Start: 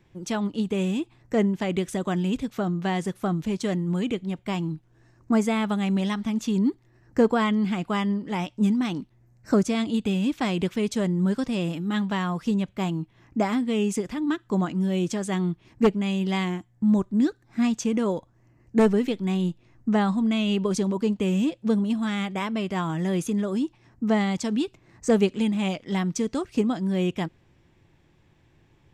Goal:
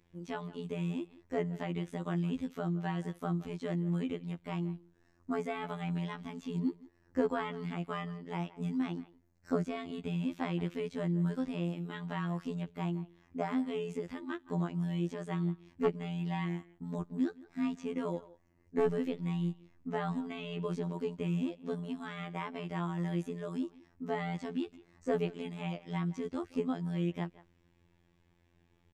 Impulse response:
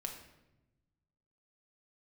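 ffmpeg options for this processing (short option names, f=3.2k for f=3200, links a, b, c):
-filter_complex "[0:a]acrossover=split=3000[a][b];[b]acompressor=threshold=-51dB:ratio=4:attack=1:release=60[c];[a][c]amix=inputs=2:normalize=0,asplit=2[d][e];[e]adelay=170,highpass=300,lowpass=3.4k,asoftclip=type=hard:threshold=-17.5dB,volume=-18dB[f];[d][f]amix=inputs=2:normalize=0,afftfilt=real='hypot(re,im)*cos(PI*b)':imag='0':win_size=2048:overlap=0.75,volume=-6dB"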